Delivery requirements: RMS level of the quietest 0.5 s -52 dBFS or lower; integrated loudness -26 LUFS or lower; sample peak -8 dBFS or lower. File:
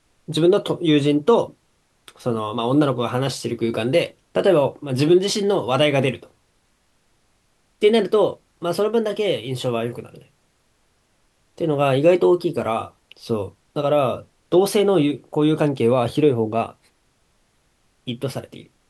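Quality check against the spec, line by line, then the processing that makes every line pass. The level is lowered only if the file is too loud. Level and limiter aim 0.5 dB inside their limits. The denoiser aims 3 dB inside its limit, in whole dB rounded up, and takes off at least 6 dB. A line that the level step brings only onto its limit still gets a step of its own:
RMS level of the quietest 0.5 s -64 dBFS: OK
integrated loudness -20.0 LUFS: fail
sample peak -4.5 dBFS: fail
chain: gain -6.5 dB

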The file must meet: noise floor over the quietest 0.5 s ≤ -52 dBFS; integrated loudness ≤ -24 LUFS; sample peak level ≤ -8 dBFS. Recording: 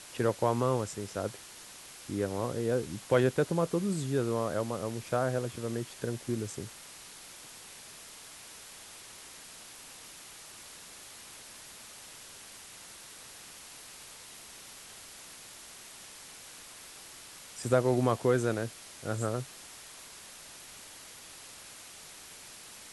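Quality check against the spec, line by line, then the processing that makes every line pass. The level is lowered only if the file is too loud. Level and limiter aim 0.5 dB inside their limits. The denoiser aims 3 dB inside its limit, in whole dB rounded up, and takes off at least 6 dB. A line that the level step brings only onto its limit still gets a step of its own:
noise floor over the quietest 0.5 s -49 dBFS: fail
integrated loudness -31.5 LUFS: OK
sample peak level -12.0 dBFS: OK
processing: denoiser 6 dB, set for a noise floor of -49 dBFS

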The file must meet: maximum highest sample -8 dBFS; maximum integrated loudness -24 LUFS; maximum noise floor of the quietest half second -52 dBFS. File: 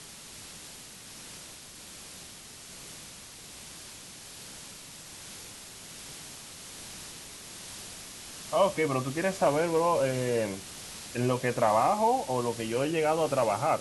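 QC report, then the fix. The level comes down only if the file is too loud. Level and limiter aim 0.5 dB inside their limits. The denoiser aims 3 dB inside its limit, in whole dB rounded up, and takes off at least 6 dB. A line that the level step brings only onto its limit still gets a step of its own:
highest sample -12.0 dBFS: OK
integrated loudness -28.5 LUFS: OK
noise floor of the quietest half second -47 dBFS: fail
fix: denoiser 8 dB, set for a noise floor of -47 dBFS

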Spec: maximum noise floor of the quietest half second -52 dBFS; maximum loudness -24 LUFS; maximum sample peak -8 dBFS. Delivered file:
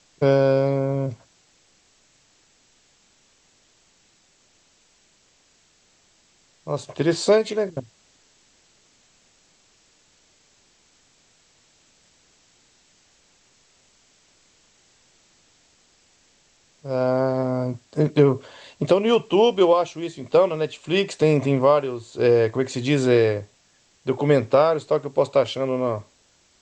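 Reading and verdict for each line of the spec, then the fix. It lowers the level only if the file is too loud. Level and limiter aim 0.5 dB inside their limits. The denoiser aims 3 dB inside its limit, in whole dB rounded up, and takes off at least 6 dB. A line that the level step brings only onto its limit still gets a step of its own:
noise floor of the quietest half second -61 dBFS: OK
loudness -21.0 LUFS: fail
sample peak -4.0 dBFS: fail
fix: gain -3.5 dB; limiter -8.5 dBFS

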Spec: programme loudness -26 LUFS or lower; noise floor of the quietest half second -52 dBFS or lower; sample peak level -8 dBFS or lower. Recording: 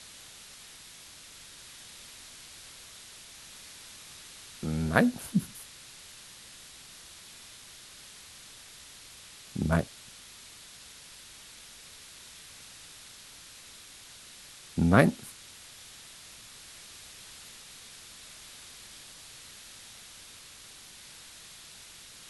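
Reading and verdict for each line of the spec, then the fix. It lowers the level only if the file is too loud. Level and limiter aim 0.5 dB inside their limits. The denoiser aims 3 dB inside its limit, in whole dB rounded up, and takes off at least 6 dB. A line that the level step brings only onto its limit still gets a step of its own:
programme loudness -34.5 LUFS: OK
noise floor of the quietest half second -50 dBFS: fail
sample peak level -3.5 dBFS: fail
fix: denoiser 6 dB, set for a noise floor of -50 dBFS; limiter -8.5 dBFS

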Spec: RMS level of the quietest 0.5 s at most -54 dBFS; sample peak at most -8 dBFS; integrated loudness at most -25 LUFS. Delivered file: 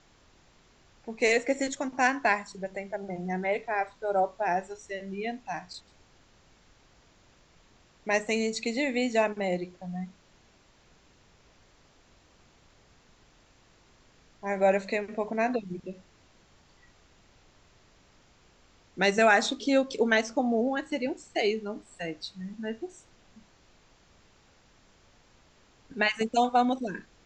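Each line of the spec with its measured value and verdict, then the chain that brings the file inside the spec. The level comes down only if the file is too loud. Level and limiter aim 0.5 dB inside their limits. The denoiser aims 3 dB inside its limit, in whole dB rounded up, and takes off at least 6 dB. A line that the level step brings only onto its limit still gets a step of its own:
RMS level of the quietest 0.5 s -61 dBFS: OK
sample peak -8.5 dBFS: OK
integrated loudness -28.5 LUFS: OK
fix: none

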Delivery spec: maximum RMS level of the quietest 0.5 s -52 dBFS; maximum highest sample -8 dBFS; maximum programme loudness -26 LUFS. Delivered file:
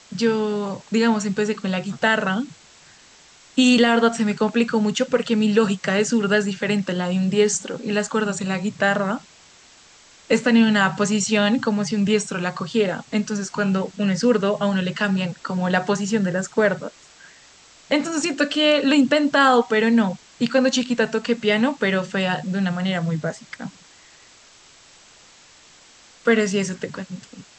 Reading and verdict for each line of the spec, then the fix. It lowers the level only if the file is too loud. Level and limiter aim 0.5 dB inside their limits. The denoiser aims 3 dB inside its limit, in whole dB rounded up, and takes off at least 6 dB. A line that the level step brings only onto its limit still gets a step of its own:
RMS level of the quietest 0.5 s -50 dBFS: fail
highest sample -5.5 dBFS: fail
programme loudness -20.5 LUFS: fail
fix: gain -6 dB

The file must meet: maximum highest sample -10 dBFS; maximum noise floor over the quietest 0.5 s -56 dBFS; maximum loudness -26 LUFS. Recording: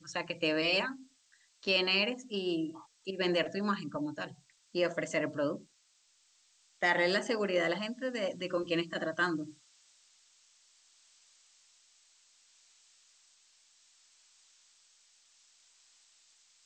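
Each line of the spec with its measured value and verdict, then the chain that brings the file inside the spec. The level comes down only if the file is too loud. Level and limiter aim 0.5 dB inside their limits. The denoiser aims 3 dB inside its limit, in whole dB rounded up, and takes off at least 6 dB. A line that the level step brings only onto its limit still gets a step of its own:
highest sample -15.5 dBFS: OK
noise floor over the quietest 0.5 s -69 dBFS: OK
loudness -32.5 LUFS: OK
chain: none

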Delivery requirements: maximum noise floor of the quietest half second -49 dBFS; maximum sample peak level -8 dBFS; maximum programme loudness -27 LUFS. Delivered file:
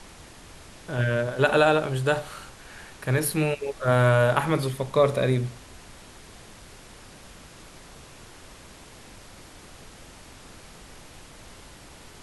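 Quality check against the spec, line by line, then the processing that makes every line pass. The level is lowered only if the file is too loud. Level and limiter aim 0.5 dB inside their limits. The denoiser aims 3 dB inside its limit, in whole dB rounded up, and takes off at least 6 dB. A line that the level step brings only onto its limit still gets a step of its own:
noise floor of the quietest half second -47 dBFS: fail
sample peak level -5.5 dBFS: fail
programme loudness -23.5 LUFS: fail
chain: gain -4 dB

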